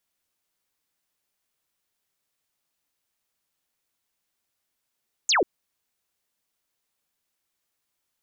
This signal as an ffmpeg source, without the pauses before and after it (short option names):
-f lavfi -i "aevalsrc='0.133*clip(t/0.002,0,1)*clip((0.14-t)/0.002,0,1)*sin(2*PI*7700*0.14/log(300/7700)*(exp(log(300/7700)*t/0.14)-1))':d=0.14:s=44100"